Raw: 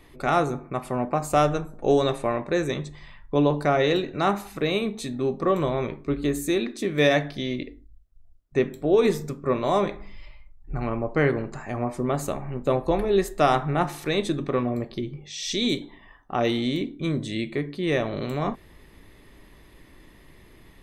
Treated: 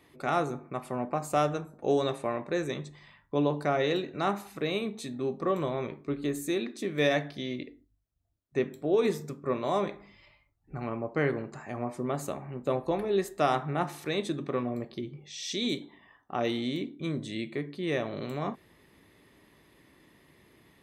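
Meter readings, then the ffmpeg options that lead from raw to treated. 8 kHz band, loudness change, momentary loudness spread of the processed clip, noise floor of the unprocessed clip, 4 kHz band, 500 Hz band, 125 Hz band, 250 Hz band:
−6.0 dB, −6.0 dB, 10 LU, −52 dBFS, −6.0 dB, −6.0 dB, −7.5 dB, −6.0 dB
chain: -af "highpass=110,volume=-6dB"

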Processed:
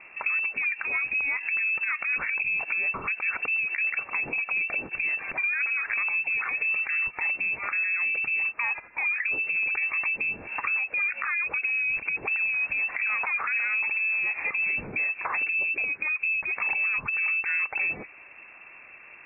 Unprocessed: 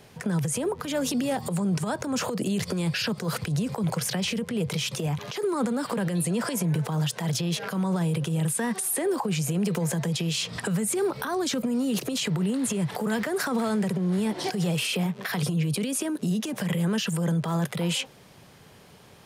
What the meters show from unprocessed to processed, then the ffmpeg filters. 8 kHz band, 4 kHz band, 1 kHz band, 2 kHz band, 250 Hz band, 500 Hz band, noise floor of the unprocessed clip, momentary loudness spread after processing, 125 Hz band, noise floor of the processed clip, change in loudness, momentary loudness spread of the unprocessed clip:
below −40 dB, below −30 dB, −3.0 dB, +13.5 dB, −25.5 dB, −17.5 dB, −52 dBFS, 3 LU, below −25 dB, −49 dBFS, +2.0 dB, 3 LU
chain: -af "acompressor=threshold=-29dB:ratio=6,lowpass=frequency=2400:width_type=q:width=0.5098,lowpass=frequency=2400:width_type=q:width=0.6013,lowpass=frequency=2400:width_type=q:width=0.9,lowpass=frequency=2400:width_type=q:width=2.563,afreqshift=-2800,volume=4.5dB"

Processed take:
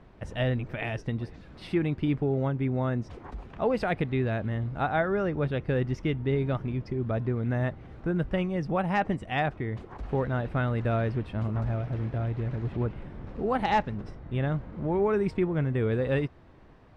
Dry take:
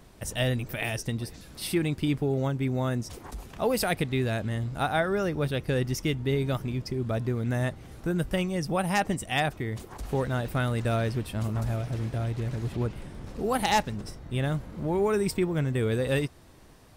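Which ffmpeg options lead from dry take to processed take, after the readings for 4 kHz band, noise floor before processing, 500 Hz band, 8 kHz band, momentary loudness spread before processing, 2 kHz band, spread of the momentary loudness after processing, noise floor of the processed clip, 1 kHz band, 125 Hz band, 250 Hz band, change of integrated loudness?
−8.5 dB, −52 dBFS, 0.0 dB, below −20 dB, 8 LU, −2.0 dB, 8 LU, −52 dBFS, 0.0 dB, 0.0 dB, 0.0 dB, −0.5 dB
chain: -af "lowpass=2200"

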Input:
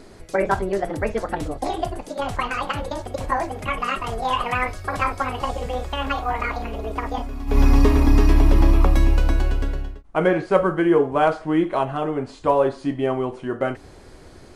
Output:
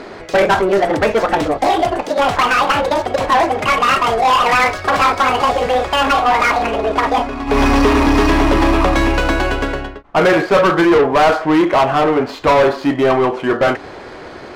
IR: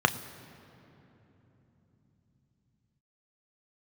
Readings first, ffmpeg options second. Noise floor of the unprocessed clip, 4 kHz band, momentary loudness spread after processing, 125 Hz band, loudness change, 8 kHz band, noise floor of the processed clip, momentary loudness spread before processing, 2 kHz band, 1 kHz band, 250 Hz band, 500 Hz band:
−45 dBFS, +13.0 dB, 5 LU, −0.5 dB, +8.0 dB, +10.5 dB, −33 dBFS, 11 LU, +12.0 dB, +11.0 dB, +7.0 dB, +8.5 dB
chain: -filter_complex "[0:a]asplit=2[link_01][link_02];[link_02]highpass=frequency=720:poles=1,volume=26dB,asoftclip=type=tanh:threshold=-3.5dB[link_03];[link_01][link_03]amix=inputs=2:normalize=0,lowpass=frequency=2900:poles=1,volume=-6dB,adynamicsmooth=sensitivity=4.5:basefreq=3600"

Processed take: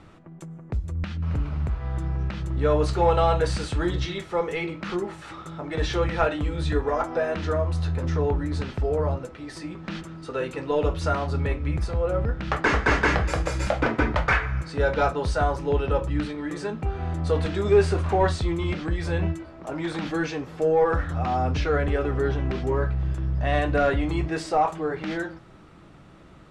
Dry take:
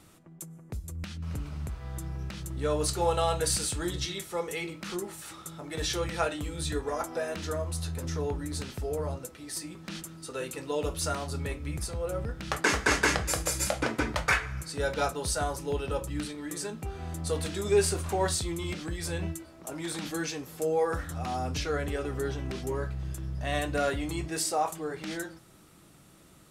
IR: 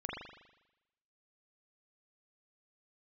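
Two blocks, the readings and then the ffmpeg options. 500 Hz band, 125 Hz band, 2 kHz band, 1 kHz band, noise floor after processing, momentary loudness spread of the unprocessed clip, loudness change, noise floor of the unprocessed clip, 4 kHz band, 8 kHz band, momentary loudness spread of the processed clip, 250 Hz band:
+7.0 dB, +9.0 dB, +4.5 dB, +7.0 dB, −48 dBFS, 11 LU, +6.0 dB, −55 dBFS, −1.5 dB, −11.0 dB, 10 LU, +7.0 dB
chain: -filter_complex "[0:a]asplit=2[link_01][link_02];[link_02]highpass=frequency=720:poles=1,volume=13dB,asoftclip=type=tanh:threshold=-12dB[link_03];[link_01][link_03]amix=inputs=2:normalize=0,lowpass=frequency=1900:poles=1,volume=-6dB,lowpass=11000,aemphasis=mode=reproduction:type=bsi,volume=2.5dB"

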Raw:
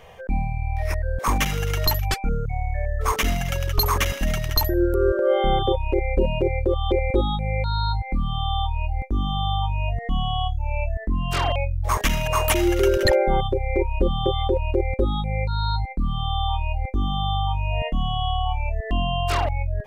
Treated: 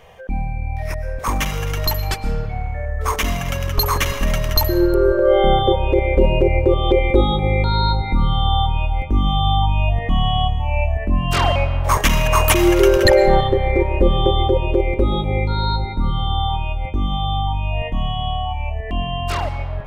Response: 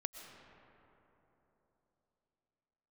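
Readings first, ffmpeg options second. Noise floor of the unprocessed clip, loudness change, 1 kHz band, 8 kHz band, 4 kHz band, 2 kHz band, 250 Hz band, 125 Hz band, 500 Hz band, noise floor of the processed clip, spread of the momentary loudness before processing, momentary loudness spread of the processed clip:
−34 dBFS, +5.0 dB, +4.5 dB, +4.0 dB, +4.5 dB, +4.5 dB, +6.0 dB, +4.5 dB, +6.0 dB, −26 dBFS, 7 LU, 10 LU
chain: -filter_complex "[0:a]dynaudnorm=framelen=880:gausssize=11:maxgain=11.5dB,asplit=2[link_01][link_02];[1:a]atrim=start_sample=2205[link_03];[link_02][link_03]afir=irnorm=-1:irlink=0,volume=5dB[link_04];[link_01][link_04]amix=inputs=2:normalize=0,volume=-7dB"

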